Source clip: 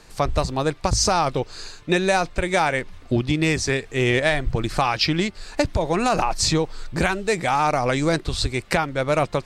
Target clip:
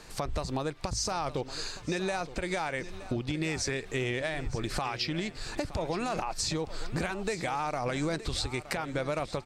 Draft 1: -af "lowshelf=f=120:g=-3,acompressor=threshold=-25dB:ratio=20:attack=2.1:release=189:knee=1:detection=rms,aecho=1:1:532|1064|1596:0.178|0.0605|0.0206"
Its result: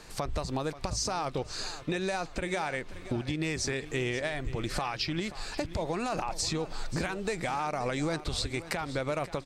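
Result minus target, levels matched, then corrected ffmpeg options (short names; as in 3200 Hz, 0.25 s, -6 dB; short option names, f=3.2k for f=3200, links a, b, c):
echo 0.387 s early
-af "lowshelf=f=120:g=-3,acompressor=threshold=-25dB:ratio=20:attack=2.1:release=189:knee=1:detection=rms,aecho=1:1:919|1838|2757:0.178|0.0605|0.0206"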